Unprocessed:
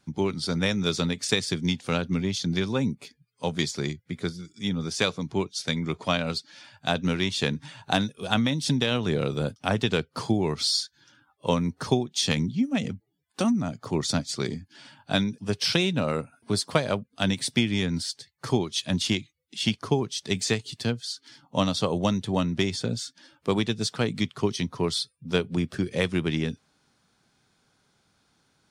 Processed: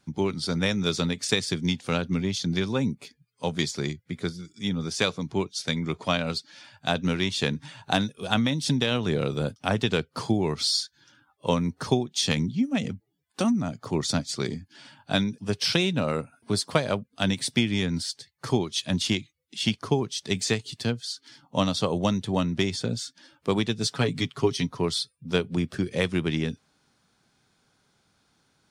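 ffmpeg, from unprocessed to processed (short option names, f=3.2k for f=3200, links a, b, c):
-filter_complex "[0:a]asettb=1/sr,asplit=3[a][b][c];[a]atrim=end=23.834[d];[b]atrim=start=23.83:end=24.7,asetpts=PTS-STARTPTS,afade=t=in:d=0.004:c=qsin,afade=t=out:st=0.866:d=0.004:c=qsin,aecho=1:1:7.2:0.62,atrim=end_sample=38367[e];[c]atrim=start=24.696[f];[d][e]acrossfade=d=0.004:c1=hsin:c2=qsin[g];[g][f]acrossfade=d=0.004:c1=qsin:c2=hsin"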